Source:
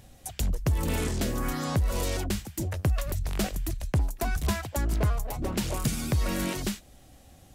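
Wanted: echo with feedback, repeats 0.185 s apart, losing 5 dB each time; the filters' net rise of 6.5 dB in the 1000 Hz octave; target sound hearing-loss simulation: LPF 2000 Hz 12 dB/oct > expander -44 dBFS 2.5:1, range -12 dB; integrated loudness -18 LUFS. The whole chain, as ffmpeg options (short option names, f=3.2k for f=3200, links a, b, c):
-af "lowpass=2k,equalizer=f=1k:t=o:g=8.5,aecho=1:1:185|370|555|740|925|1110|1295:0.562|0.315|0.176|0.0988|0.0553|0.031|0.0173,agate=range=-12dB:threshold=-44dB:ratio=2.5,volume=10dB"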